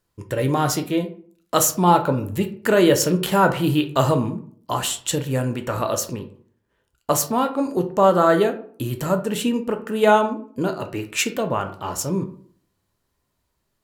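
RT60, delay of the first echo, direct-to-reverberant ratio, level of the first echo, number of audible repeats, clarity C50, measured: 0.55 s, no echo, 6.0 dB, no echo, no echo, 12.5 dB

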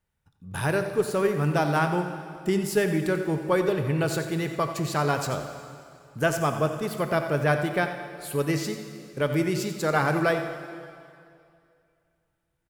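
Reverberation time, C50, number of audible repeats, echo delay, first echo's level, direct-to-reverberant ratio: 2.4 s, 7.0 dB, 1, 89 ms, -12.0 dB, 6.0 dB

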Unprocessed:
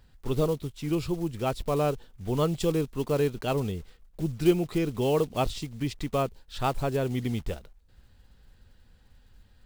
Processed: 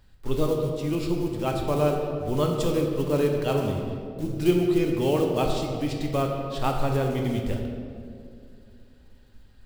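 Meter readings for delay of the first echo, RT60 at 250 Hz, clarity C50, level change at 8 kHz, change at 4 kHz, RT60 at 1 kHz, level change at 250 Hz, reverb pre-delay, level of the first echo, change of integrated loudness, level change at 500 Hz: no echo, 3.2 s, 3.0 dB, +1.0 dB, +2.0 dB, 1.9 s, +3.5 dB, 3 ms, no echo, +3.0 dB, +3.5 dB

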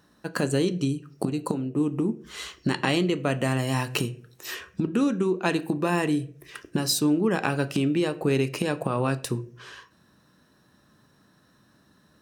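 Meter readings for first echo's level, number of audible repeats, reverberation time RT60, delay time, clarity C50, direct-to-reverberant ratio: no echo, no echo, 0.50 s, no echo, 18.0 dB, 10.0 dB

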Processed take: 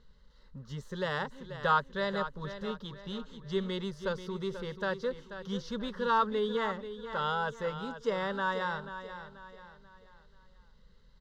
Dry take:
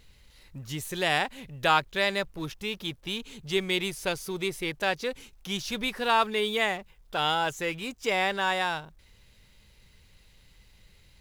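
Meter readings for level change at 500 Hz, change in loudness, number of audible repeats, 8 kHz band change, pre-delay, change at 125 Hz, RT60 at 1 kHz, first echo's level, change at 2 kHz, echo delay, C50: -2.5 dB, -5.5 dB, 3, under -15 dB, no reverb, -1.5 dB, no reverb, -11.0 dB, -7.5 dB, 486 ms, no reverb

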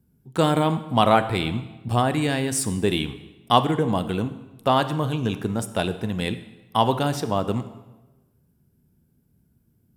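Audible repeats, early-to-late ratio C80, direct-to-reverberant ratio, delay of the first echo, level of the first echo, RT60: no echo, 14.5 dB, 11.0 dB, no echo, no echo, 1.1 s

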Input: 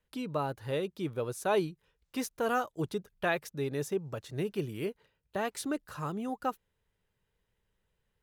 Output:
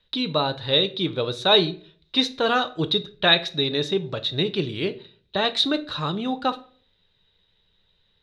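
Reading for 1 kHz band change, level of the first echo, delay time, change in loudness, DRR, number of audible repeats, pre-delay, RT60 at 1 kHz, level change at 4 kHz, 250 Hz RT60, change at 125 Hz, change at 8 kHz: +8.5 dB, no echo, no echo, +12.0 dB, 9.5 dB, no echo, 3 ms, 0.40 s, +26.0 dB, 0.55 s, +8.0 dB, -0.5 dB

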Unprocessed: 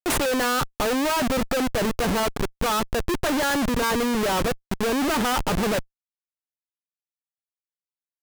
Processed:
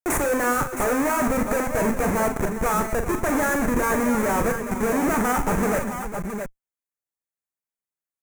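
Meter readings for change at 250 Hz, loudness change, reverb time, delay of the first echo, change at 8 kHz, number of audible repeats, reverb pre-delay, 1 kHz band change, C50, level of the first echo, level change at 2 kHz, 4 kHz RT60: +1.5 dB, +0.5 dB, no reverb, 41 ms, +0.5 dB, 5, no reverb, +1.5 dB, no reverb, -8.0 dB, +1.0 dB, no reverb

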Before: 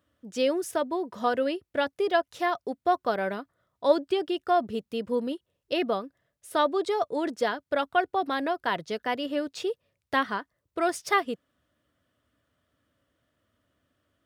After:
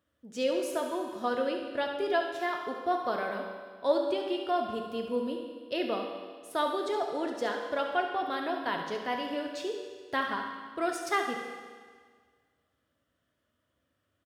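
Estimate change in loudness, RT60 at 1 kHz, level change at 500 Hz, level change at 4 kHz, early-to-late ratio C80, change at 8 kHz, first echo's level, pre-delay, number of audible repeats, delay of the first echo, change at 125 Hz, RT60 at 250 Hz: -4.0 dB, 1.7 s, -3.5 dB, -3.0 dB, 5.5 dB, -3.5 dB, -9.5 dB, 9 ms, 1, 70 ms, -5.0 dB, 1.7 s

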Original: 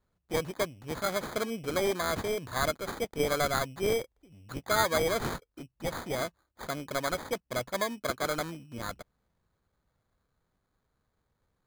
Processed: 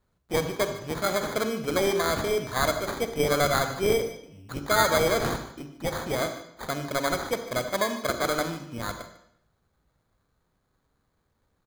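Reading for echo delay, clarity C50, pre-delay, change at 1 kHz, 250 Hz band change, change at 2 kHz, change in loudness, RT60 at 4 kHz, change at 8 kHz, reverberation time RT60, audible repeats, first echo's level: 148 ms, 8.5 dB, 38 ms, +5.0 dB, +5.5 dB, +5.0 dB, +5.0 dB, 0.70 s, +5.0 dB, 0.70 s, 1, -16.5 dB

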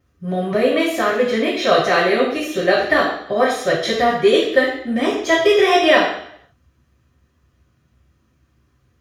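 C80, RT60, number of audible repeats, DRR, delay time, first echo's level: 6.5 dB, 0.70 s, no echo, -16.0 dB, no echo, no echo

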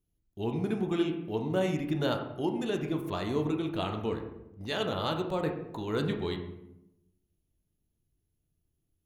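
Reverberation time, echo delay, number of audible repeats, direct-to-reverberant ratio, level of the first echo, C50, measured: 0.85 s, no echo, no echo, 3.5 dB, no echo, 7.5 dB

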